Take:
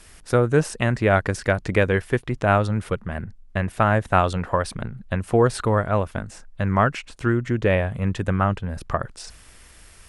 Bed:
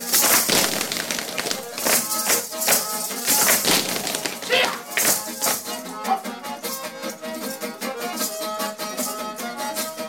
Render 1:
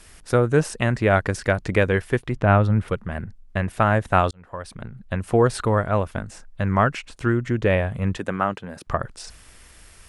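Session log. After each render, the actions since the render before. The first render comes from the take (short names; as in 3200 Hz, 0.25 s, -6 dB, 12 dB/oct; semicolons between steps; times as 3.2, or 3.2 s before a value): 2.36–2.88 tone controls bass +5 dB, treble -12 dB; 4.31–5.29 fade in; 8.17–8.87 HPF 220 Hz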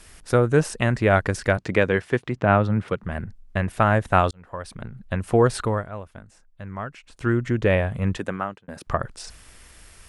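1.57–3.03 BPF 120–7500 Hz; 5.58–7.34 dip -13.5 dB, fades 0.33 s; 8.21–8.68 fade out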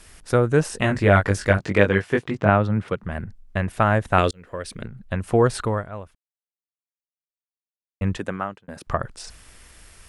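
0.71–2.5 doubler 20 ms -2.5 dB; 4.18–4.87 EQ curve 130 Hz 0 dB, 460 Hz +7 dB, 820 Hz -6 dB, 2100 Hz +6 dB; 6.15–8.01 mute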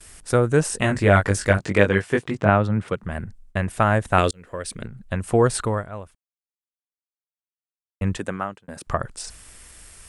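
gate with hold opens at -39 dBFS; bell 8500 Hz +8 dB 0.79 oct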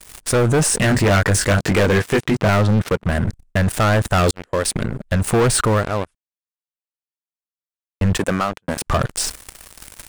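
sample leveller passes 5; limiter -11.5 dBFS, peak gain reduction 10 dB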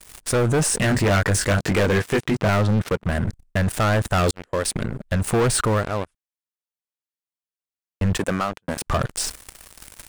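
gain -3.5 dB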